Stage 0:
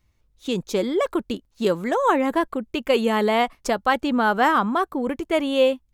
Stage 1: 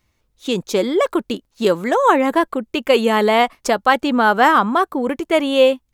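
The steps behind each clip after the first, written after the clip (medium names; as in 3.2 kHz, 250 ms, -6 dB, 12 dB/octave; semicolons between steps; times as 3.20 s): bass shelf 130 Hz -10.5 dB; trim +6 dB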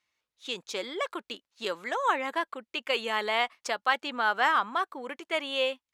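band-pass filter 2.8 kHz, Q 0.57; trim -7 dB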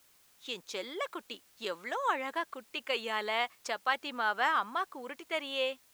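word length cut 10-bit, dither triangular; trim -4.5 dB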